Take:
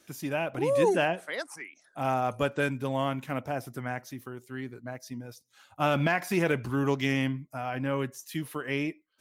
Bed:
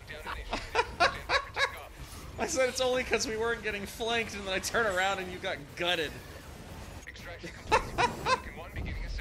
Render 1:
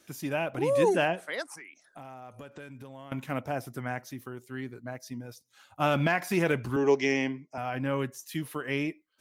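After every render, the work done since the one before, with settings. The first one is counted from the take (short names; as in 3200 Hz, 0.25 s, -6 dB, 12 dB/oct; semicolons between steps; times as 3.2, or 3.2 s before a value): 1.55–3.12 compressor, threshold -42 dBFS; 6.76–7.58 speaker cabinet 230–6900 Hz, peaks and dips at 410 Hz +8 dB, 830 Hz +5 dB, 1300 Hz -9 dB, 2200 Hz +4 dB, 3600 Hz -7 dB, 5600 Hz +8 dB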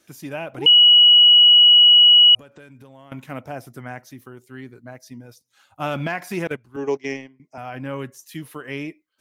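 0.66–2.35 bleep 2920 Hz -7.5 dBFS; 6.47–7.4 gate -27 dBFS, range -19 dB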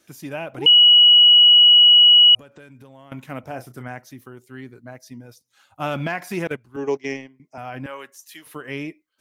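3.4–3.88 doubler 32 ms -10 dB; 7.86–8.47 HPF 660 Hz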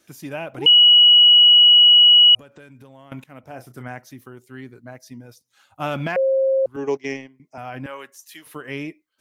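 3.24–3.85 fade in, from -15.5 dB; 6.16–6.66 bleep 534 Hz -15 dBFS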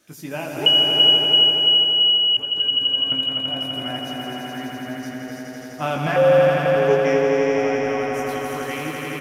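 doubler 19 ms -5 dB; swelling echo 84 ms, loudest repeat 5, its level -4 dB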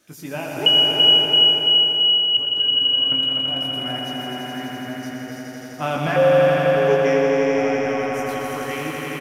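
echo 0.121 s -8 dB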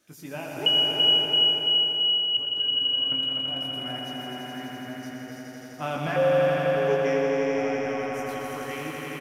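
gain -6.5 dB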